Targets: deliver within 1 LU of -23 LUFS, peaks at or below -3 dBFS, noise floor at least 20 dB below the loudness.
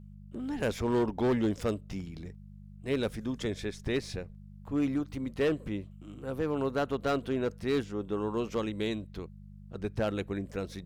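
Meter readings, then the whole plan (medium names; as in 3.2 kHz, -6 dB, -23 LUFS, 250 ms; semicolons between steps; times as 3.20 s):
clipped samples 1.1%; clipping level -22.5 dBFS; hum 50 Hz; highest harmonic 200 Hz; hum level -46 dBFS; loudness -32.5 LUFS; peak level -22.5 dBFS; loudness target -23.0 LUFS
-> clip repair -22.5 dBFS; de-hum 50 Hz, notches 4; trim +9.5 dB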